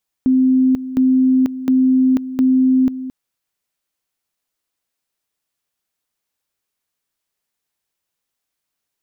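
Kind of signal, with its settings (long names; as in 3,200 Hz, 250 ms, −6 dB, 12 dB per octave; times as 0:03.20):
tone at two levels in turn 259 Hz −10 dBFS, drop 13.5 dB, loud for 0.49 s, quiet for 0.22 s, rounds 4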